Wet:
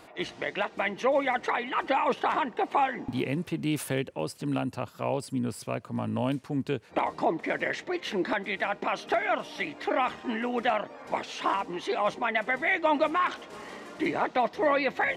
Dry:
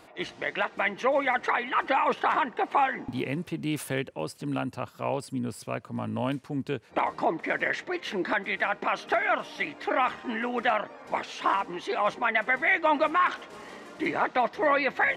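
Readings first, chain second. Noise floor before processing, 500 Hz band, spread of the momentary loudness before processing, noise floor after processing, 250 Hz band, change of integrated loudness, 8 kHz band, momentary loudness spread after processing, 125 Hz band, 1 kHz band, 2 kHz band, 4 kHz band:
−51 dBFS, +0.5 dB, 10 LU, −51 dBFS, +1.5 dB, −1.0 dB, +1.5 dB, 8 LU, +1.5 dB, −2.0 dB, −3.5 dB, 0.0 dB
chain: dynamic equaliser 1,500 Hz, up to −6 dB, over −39 dBFS, Q 0.93
level +1.5 dB

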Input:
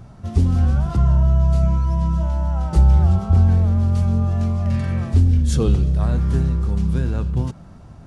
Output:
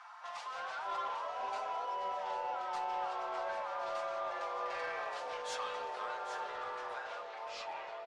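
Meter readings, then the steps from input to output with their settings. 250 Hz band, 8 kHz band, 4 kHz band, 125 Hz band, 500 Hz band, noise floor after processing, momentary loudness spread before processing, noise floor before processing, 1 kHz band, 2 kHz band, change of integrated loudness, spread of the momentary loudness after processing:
below −35 dB, can't be measured, −5.5 dB, below −40 dB, −9.5 dB, −46 dBFS, 6 LU, −41 dBFS, −1.5 dB, −0.5 dB, −21.0 dB, 5 LU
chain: fade-out on the ending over 2.58 s
Butterworth high-pass 900 Hz 48 dB per octave
spectral tilt −3.5 dB per octave
comb filter 5.7 ms, depth 55%
in parallel at +1.5 dB: downward compressor, threshold −52 dBFS, peak gain reduction 18 dB
on the sum: soft clipping −34.5 dBFS, distortion −15 dB
high-frequency loss of the air 71 metres
single-tap delay 796 ms −10.5 dB
delay with pitch and tempo change per echo 212 ms, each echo −5 semitones, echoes 2

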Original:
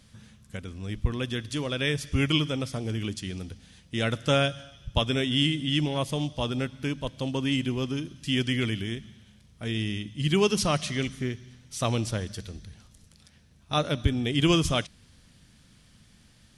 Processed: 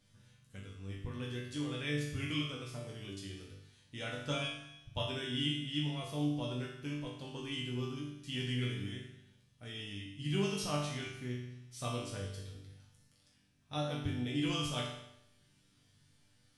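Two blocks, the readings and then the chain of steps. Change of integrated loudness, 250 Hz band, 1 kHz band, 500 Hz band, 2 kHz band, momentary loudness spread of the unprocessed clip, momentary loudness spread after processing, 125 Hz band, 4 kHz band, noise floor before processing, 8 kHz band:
−10.5 dB, −10.5 dB, −11.0 dB, −12.0 dB, −10.5 dB, 14 LU, 14 LU, −10.0 dB, −10.0 dB, −58 dBFS, −10.5 dB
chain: resonators tuned to a chord G2 major, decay 0.79 s
level +7 dB

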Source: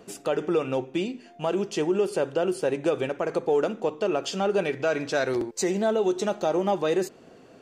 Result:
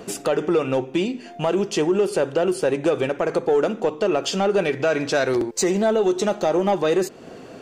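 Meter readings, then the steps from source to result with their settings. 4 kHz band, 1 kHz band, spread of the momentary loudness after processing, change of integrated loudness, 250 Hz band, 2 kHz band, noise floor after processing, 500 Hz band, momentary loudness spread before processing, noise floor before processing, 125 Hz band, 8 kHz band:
+6.0 dB, +4.5 dB, 4 LU, +5.0 dB, +5.0 dB, +5.0 dB, −41 dBFS, +4.5 dB, 4 LU, −51 dBFS, +5.5 dB, +6.5 dB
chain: in parallel at +3 dB: downward compressor, threshold −37 dBFS, peak gain reduction 16.5 dB
on the sum: soft clipping −13 dBFS, distortion −23 dB
level +3.5 dB

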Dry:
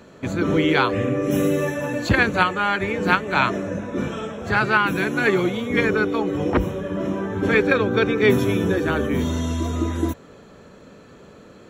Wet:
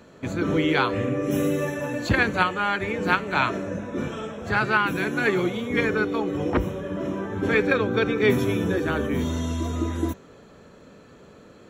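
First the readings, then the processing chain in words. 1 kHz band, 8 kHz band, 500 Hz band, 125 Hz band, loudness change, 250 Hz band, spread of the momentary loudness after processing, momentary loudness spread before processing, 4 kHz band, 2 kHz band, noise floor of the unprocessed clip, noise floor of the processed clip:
−3.0 dB, −3.0 dB, −3.5 dB, −3.0 dB, −3.0 dB, −3.0 dB, 9 LU, 9 LU, −3.0 dB, −3.0 dB, −46 dBFS, −50 dBFS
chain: hum removal 193.4 Hz, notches 35
level −3 dB

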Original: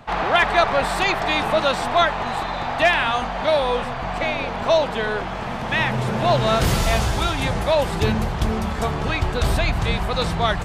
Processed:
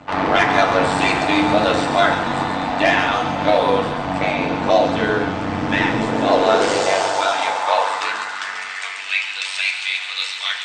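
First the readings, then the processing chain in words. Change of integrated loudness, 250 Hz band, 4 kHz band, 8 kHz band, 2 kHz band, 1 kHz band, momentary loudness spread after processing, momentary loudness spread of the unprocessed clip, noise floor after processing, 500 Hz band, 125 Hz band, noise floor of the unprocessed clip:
+2.5 dB, +5.0 dB, +2.5 dB, +2.5 dB, +3.0 dB, +3.0 dB, 7 LU, 7 LU, −29 dBFS, +2.5 dB, −5.5 dB, −28 dBFS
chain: Chebyshev low-pass filter 8,800 Hz, order 8
mains-hum notches 50/100/150/200/250 Hz
high-pass filter sweep 190 Hz → 2,500 Hz, 0:05.52–0:09.07
soft clipping −7 dBFS, distortion −23 dB
amplitude modulation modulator 96 Hz, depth 100%
delay with a high-pass on its return 138 ms, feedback 59%, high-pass 3,500 Hz, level −5.5 dB
feedback delay network reverb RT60 0.8 s, low-frequency decay 1.4×, high-frequency decay 0.5×, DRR 0.5 dB
level +4.5 dB

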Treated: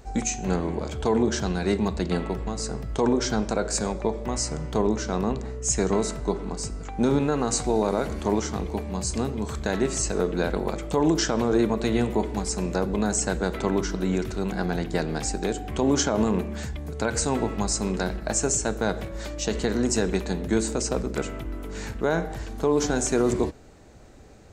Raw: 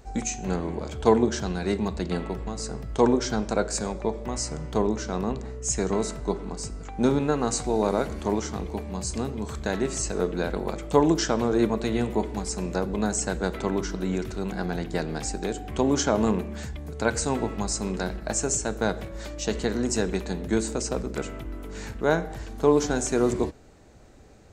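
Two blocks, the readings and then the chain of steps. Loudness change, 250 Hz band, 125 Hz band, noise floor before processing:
+1.0 dB, +1.0 dB, +2.0 dB, −38 dBFS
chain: brickwall limiter −14.5 dBFS, peak gain reduction 9.5 dB
level +2.5 dB

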